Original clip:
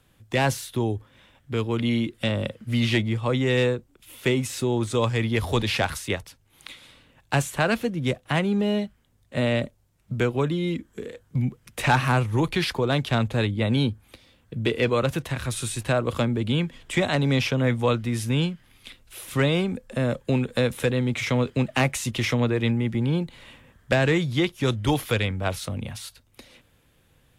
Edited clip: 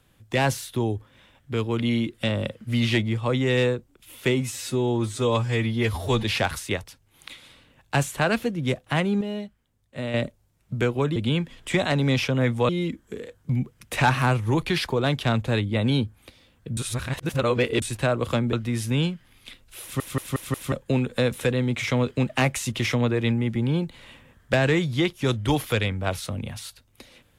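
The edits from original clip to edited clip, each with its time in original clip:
4.41–5.63 stretch 1.5×
8.6–9.53 gain -7 dB
14.63–15.68 reverse
16.39–17.92 move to 10.55
19.21 stutter in place 0.18 s, 5 plays

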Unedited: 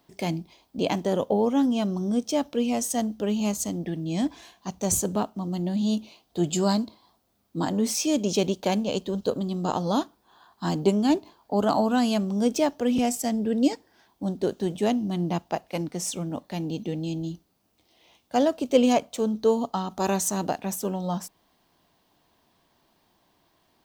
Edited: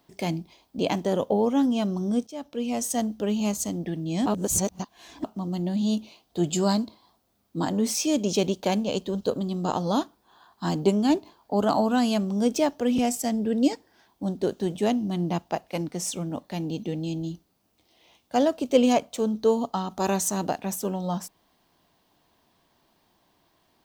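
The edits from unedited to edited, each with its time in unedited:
2.27–2.89 fade in, from -18 dB
4.26–5.24 reverse

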